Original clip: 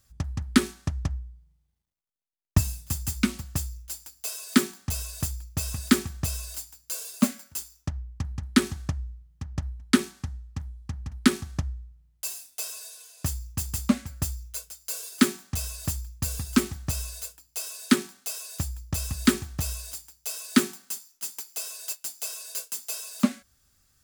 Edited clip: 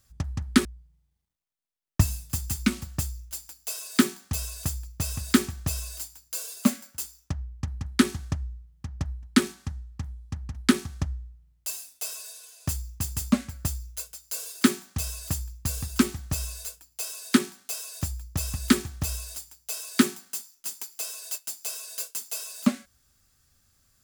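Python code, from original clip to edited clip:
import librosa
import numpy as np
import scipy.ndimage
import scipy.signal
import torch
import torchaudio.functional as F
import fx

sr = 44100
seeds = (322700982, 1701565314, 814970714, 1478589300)

y = fx.edit(x, sr, fx.cut(start_s=0.65, length_s=0.57), tone=tone)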